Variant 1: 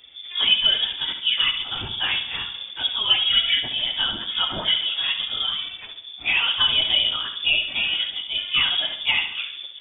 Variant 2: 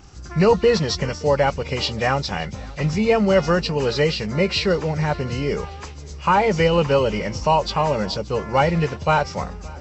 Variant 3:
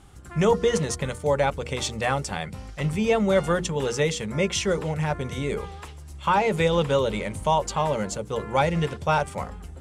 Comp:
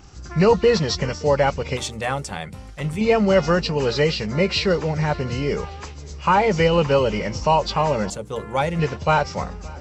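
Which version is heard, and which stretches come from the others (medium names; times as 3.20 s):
2
1.77–3.01 s: from 3
8.10–8.79 s: from 3
not used: 1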